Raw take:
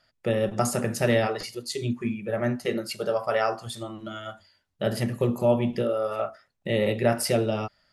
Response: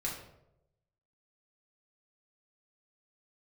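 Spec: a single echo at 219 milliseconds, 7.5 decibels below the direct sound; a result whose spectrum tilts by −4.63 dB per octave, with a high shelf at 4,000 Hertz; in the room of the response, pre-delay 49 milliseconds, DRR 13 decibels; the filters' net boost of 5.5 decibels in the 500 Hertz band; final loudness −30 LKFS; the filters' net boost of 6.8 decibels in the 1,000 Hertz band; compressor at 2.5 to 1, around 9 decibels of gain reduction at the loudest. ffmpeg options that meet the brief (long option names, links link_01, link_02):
-filter_complex "[0:a]equalizer=frequency=500:width_type=o:gain=4,equalizer=frequency=1000:width_type=o:gain=8,highshelf=frequency=4000:gain=5.5,acompressor=threshold=-25dB:ratio=2.5,aecho=1:1:219:0.422,asplit=2[link_01][link_02];[1:a]atrim=start_sample=2205,adelay=49[link_03];[link_02][link_03]afir=irnorm=-1:irlink=0,volume=-15.5dB[link_04];[link_01][link_04]amix=inputs=2:normalize=0,volume=-2.5dB"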